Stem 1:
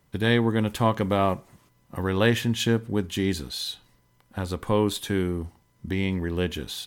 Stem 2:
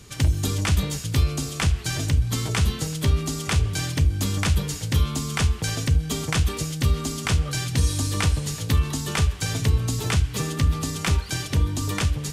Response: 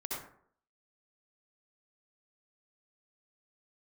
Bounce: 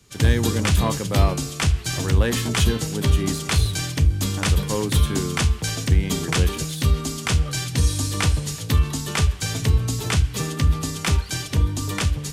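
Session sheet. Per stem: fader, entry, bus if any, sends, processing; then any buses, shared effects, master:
−6.0 dB, 0.00 s, no send, leveller curve on the samples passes 1; parametric band 9,700 Hz +9 dB 0.8 octaves
+2.0 dB, 0.00 s, no send, no processing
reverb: not used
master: multiband upward and downward expander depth 40%

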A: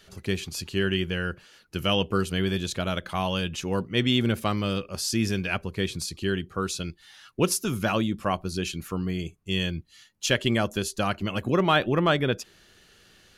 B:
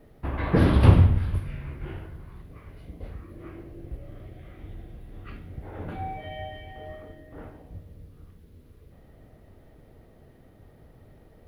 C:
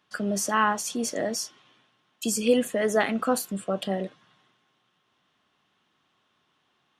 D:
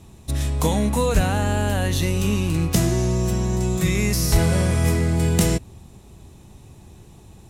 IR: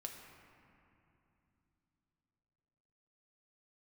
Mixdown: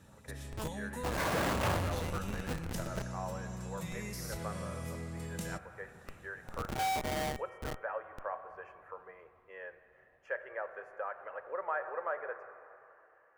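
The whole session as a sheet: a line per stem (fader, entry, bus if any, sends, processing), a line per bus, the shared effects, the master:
−7.5 dB, 0.00 s, bus B, send −4 dB, elliptic band-pass filter 490–1,800 Hz
−1.0 dB, 0.80 s, bus A, send −19 dB, flat-topped bell 1,300 Hz +13.5 dB 2.9 octaves
−10.5 dB, 0.00 s, bus A, no send, low-shelf EQ 66 Hz −7.5 dB
−10.0 dB, 0.00 s, bus B, send −20.5 dB, no processing
bus A: 0.0 dB, comparator with hysteresis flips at −24.5 dBFS; brickwall limiter −32 dBFS, peak gain reduction 11 dB
bus B: 0.0 dB, notch comb filter 360 Hz; downward compressor 2 to 1, threshold −46 dBFS, peak gain reduction 13 dB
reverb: on, RT60 2.9 s, pre-delay 5 ms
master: low-shelf EQ 88 Hz −8.5 dB

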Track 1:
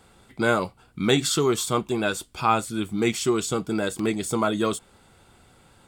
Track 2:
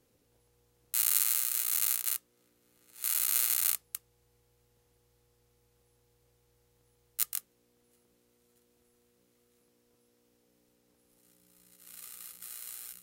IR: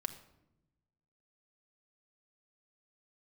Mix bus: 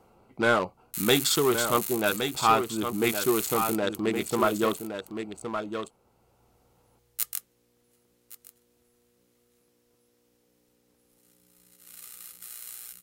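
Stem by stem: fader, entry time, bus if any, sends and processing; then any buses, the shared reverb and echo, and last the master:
−3.0 dB, 0.00 s, no send, echo send −7.5 dB, adaptive Wiener filter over 25 samples; mid-hump overdrive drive 12 dB, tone 7,400 Hz, clips at −6.5 dBFS
+2.0 dB, 0.00 s, no send, echo send −18 dB, hard clipping −9 dBFS, distortion −21 dB; automatic ducking −7 dB, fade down 0.20 s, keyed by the first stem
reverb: not used
echo: single-tap delay 1,117 ms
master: no processing

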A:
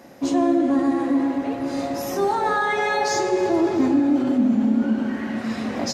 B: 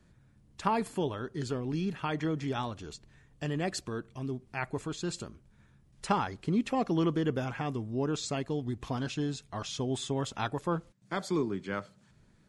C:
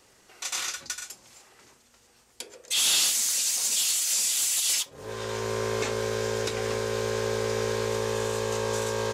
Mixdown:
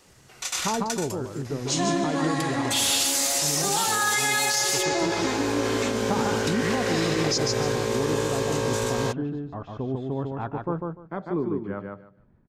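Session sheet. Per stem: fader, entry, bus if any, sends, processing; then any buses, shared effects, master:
0.0 dB, 1.45 s, no send, echo send −8 dB, meter weighting curve ITU-R 468
+2.5 dB, 0.00 s, no send, echo send −3.5 dB, low-pass filter 1,100 Hz 12 dB per octave; noise gate with hold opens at −54 dBFS
+2.0 dB, 0.00 s, no send, no echo send, no processing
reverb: not used
echo: repeating echo 148 ms, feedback 18%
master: brickwall limiter −14.5 dBFS, peak gain reduction 10 dB

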